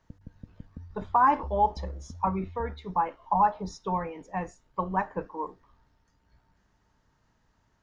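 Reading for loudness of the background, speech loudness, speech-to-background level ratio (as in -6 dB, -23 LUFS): -44.5 LUFS, -29.0 LUFS, 15.5 dB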